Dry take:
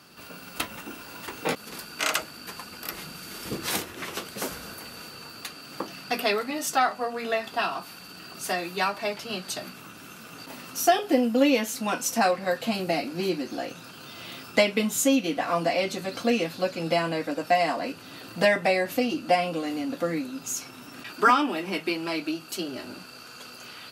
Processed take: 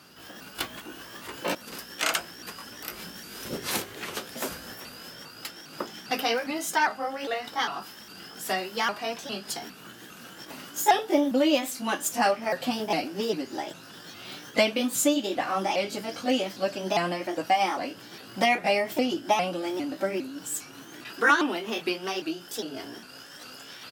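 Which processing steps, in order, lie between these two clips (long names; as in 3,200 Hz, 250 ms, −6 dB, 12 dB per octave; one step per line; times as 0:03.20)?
pitch shifter swept by a sawtooth +3.5 semitones, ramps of 404 ms
far-end echo of a speakerphone 90 ms, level −27 dB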